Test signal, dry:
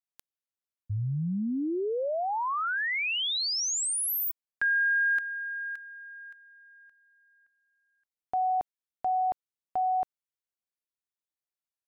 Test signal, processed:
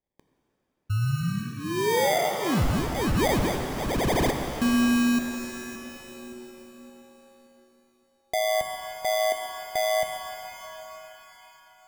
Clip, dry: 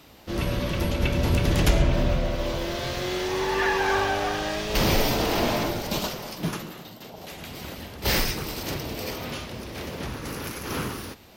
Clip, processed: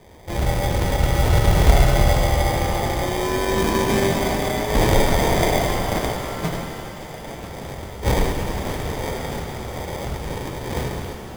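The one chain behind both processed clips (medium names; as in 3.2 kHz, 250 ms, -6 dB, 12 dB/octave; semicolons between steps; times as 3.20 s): static phaser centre 1.3 kHz, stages 8; sample-and-hold 32×; pitch-shifted reverb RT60 3.7 s, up +7 st, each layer -8 dB, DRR 4.5 dB; trim +7 dB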